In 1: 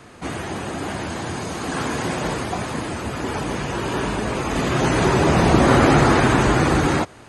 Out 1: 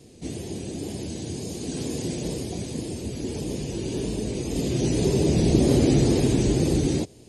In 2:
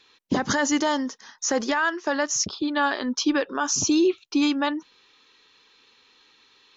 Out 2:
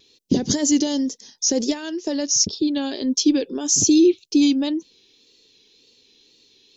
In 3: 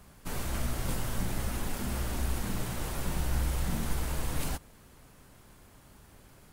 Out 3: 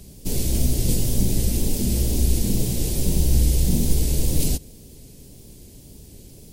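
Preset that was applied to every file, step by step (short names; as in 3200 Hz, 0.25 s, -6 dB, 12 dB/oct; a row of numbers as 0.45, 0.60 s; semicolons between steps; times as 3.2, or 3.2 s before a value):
EQ curve 430 Hz 0 dB, 1300 Hz -27 dB, 2400 Hz -10 dB, 4900 Hz +1 dB; wow and flutter 65 cents; normalise peaks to -6 dBFS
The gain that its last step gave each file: -3.0, +5.5, +12.5 dB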